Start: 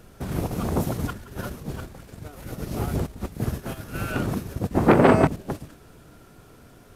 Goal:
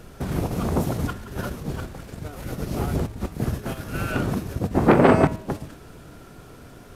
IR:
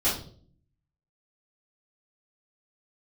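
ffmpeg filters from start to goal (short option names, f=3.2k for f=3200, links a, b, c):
-filter_complex "[0:a]highshelf=f=8.9k:g=-4.5,bandreject=f=106.4:t=h:w=4,bandreject=f=212.8:t=h:w=4,bandreject=f=319.2:t=h:w=4,bandreject=f=425.6:t=h:w=4,bandreject=f=532:t=h:w=4,bandreject=f=638.4:t=h:w=4,bandreject=f=744.8:t=h:w=4,bandreject=f=851.2:t=h:w=4,bandreject=f=957.6:t=h:w=4,bandreject=f=1.064k:t=h:w=4,bandreject=f=1.1704k:t=h:w=4,bandreject=f=1.2768k:t=h:w=4,bandreject=f=1.3832k:t=h:w=4,bandreject=f=1.4896k:t=h:w=4,bandreject=f=1.596k:t=h:w=4,bandreject=f=1.7024k:t=h:w=4,bandreject=f=1.8088k:t=h:w=4,bandreject=f=1.9152k:t=h:w=4,bandreject=f=2.0216k:t=h:w=4,bandreject=f=2.128k:t=h:w=4,bandreject=f=2.2344k:t=h:w=4,bandreject=f=2.3408k:t=h:w=4,bandreject=f=2.4472k:t=h:w=4,bandreject=f=2.5536k:t=h:w=4,bandreject=f=2.66k:t=h:w=4,bandreject=f=2.7664k:t=h:w=4,bandreject=f=2.8728k:t=h:w=4,bandreject=f=2.9792k:t=h:w=4,bandreject=f=3.0856k:t=h:w=4,bandreject=f=3.192k:t=h:w=4,bandreject=f=3.2984k:t=h:w=4,bandreject=f=3.4048k:t=h:w=4,bandreject=f=3.5112k:t=h:w=4,bandreject=f=3.6176k:t=h:w=4,bandreject=f=3.724k:t=h:w=4,bandreject=f=3.8304k:t=h:w=4,bandreject=f=3.9368k:t=h:w=4,bandreject=f=4.0432k:t=h:w=4,asplit=2[a][b];[b]acompressor=threshold=-35dB:ratio=6,volume=-0.5dB[c];[a][c]amix=inputs=2:normalize=0"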